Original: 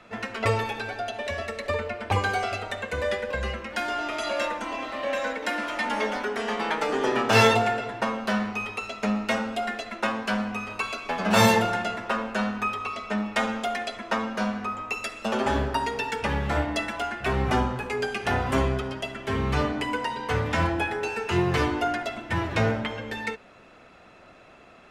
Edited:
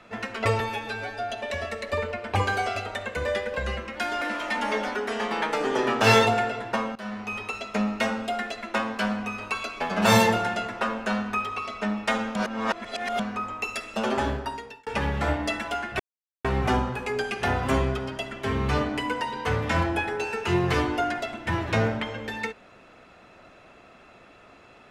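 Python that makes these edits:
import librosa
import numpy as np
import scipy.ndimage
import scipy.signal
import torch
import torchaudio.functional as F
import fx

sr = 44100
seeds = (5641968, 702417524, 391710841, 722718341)

y = fx.edit(x, sr, fx.stretch_span(start_s=0.6, length_s=0.47, factor=1.5),
    fx.cut(start_s=3.98, length_s=1.52),
    fx.fade_in_from(start_s=8.24, length_s=0.45, floor_db=-18.5),
    fx.reverse_span(start_s=13.64, length_s=0.84),
    fx.fade_out_span(start_s=15.4, length_s=0.75),
    fx.insert_silence(at_s=17.28, length_s=0.45), tone=tone)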